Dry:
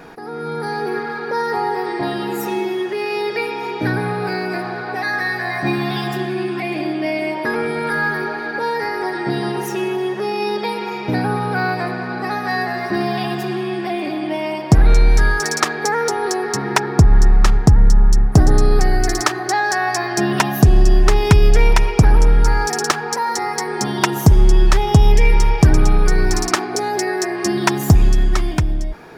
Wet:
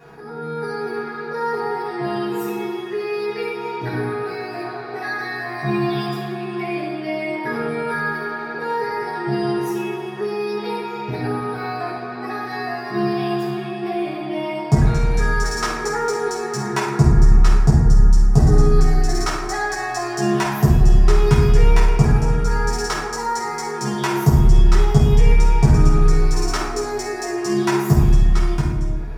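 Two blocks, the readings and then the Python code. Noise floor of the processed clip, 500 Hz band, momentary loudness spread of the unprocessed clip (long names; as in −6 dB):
−29 dBFS, −2.0 dB, 9 LU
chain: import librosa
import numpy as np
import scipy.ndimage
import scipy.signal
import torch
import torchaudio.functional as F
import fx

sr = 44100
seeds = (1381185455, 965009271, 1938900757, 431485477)

y = fx.rev_fdn(x, sr, rt60_s=1.2, lf_ratio=1.3, hf_ratio=0.55, size_ms=42.0, drr_db=-8.5)
y = y * 10.0 ** (-13.0 / 20.0)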